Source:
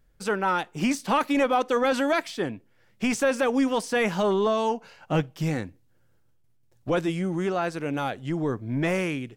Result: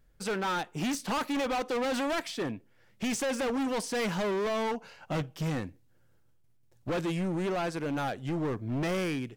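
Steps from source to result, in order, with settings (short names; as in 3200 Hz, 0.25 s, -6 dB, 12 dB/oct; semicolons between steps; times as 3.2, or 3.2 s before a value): hard clip -27 dBFS, distortion -7 dB; gain -1 dB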